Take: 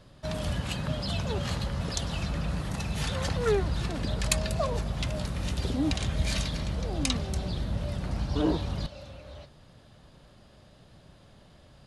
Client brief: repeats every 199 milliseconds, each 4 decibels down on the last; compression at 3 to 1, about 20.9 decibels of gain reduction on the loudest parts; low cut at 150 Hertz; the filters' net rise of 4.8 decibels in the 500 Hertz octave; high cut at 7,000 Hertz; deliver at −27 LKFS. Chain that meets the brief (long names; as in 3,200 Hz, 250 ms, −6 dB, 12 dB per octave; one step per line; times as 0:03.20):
high-pass filter 150 Hz
low-pass filter 7,000 Hz
parametric band 500 Hz +6 dB
downward compressor 3 to 1, threshold −47 dBFS
repeating echo 199 ms, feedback 63%, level −4 dB
level +17 dB